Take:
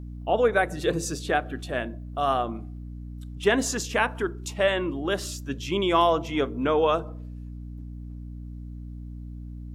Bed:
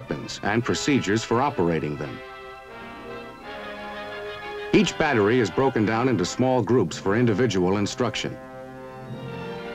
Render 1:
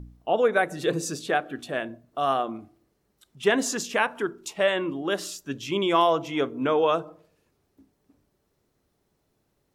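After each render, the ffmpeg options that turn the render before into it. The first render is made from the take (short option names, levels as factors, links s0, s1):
-af "bandreject=f=60:t=h:w=4,bandreject=f=120:t=h:w=4,bandreject=f=180:t=h:w=4,bandreject=f=240:t=h:w=4,bandreject=f=300:t=h:w=4"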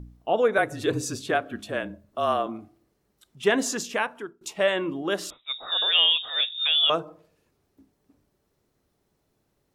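-filter_complex "[0:a]asettb=1/sr,asplit=3[s0][s1][s2];[s0]atrim=end=0.584[s3];[s1]atrim=start=0.58:end=2.47,asetpts=PTS-STARTPTS,afade=t=in:d=0.004:c=qsin,afade=t=out:st=1.886:d=0.004:c=qsin,afreqshift=-33[s4];[s2]atrim=start=2.466[s5];[s3][s4]acrossfade=d=0.004:c1=hsin:c2=qsin[s6];[s6][s5]acrossfade=d=0.004:c1=qsin:c2=hsin,asettb=1/sr,asplit=3[s7][s8][s9];[s7]atrim=end=5.304[s10];[s8]atrim=start=5.3:end=6.9,asetpts=PTS-STARTPTS,afade=t=in:d=0.004:c=qsin,afade=t=out:st=1.596:d=0.004:c=qsin,lowpass=f=3300:t=q:w=0.5098,lowpass=f=3300:t=q:w=0.6013,lowpass=f=3300:t=q:w=0.9,lowpass=f=3300:t=q:w=2.563,afreqshift=-3900[s11];[s9]atrim=start=6.896[s12];[s10][s11]acrossfade=d=0.004:c1=hsin:c2=qsin[s13];[s13][s12]acrossfade=d=0.004:c1=qsin:c2=hsin,asplit=2[s14][s15];[s14]atrim=end=4.41,asetpts=PTS-STARTPTS,afade=t=out:st=3.6:d=0.81:c=qsin:silence=0.0749894[s16];[s15]atrim=start=4.41,asetpts=PTS-STARTPTS,afade=t=in:d=0.004:c=hsin:silence=0.0749894[s17];[s16][s17]concat=n=2:v=0:a=1"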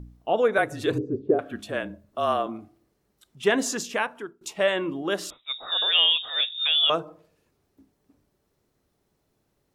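-filter_complex "[0:a]asettb=1/sr,asplit=3[s0][s1][s2];[s0]atrim=end=0.984[s3];[s1]atrim=start=0.98:end=1.39,asetpts=PTS-STARTPTS,afade=t=in:d=0.004:c=qsin,afade=t=out:st=0.406:d=0.004:c=qsin,lowpass=f=410:t=q:w=3.6[s4];[s2]atrim=start=1.386[s5];[s3][s4]acrossfade=d=0.004:c1=hsin:c2=qsin[s6];[s6][s5]acrossfade=d=0.004:c1=qsin:c2=hsin"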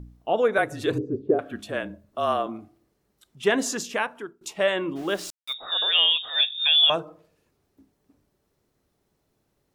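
-filter_complex "[0:a]asplit=3[s0][s1][s2];[s0]afade=t=out:st=4.95:d=0.02[s3];[s1]aeval=exprs='val(0)*gte(abs(val(0)),0.0106)':c=same,afade=t=in:st=4.95:d=0.02,afade=t=out:st=5.52:d=0.02[s4];[s2]afade=t=in:st=5.52:d=0.02[s5];[s3][s4][s5]amix=inputs=3:normalize=0,asettb=1/sr,asplit=3[s6][s7][s8];[s6]atrim=end=6.354[s9];[s7]atrim=start=6.35:end=6.96,asetpts=PTS-STARTPTS,afade=t=in:d=0.004:c=qsin,afade=t=out:st=0.606:d=0.004:c=qsin,aecho=1:1:1.2:0.65,atrim=end_sample=26901[s10];[s8]atrim=start=6.956[s11];[s9][s10]acrossfade=d=0.004:c1=hsin:c2=qsin[s12];[s12][s11]acrossfade=d=0.004:c1=qsin:c2=hsin"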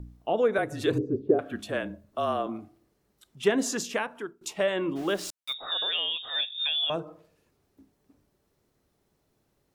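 -filter_complex "[0:a]acrossover=split=490[s0][s1];[s1]acompressor=threshold=0.0398:ratio=4[s2];[s0][s2]amix=inputs=2:normalize=0"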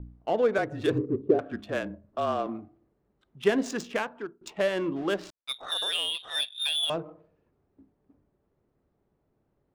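-af "adynamicsmooth=sensitivity=5.5:basefreq=1600"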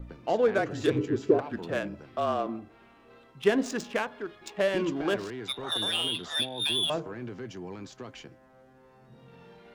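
-filter_complex "[1:a]volume=0.119[s0];[0:a][s0]amix=inputs=2:normalize=0"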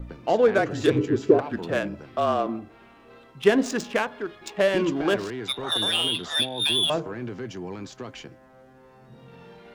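-af "volume=1.78"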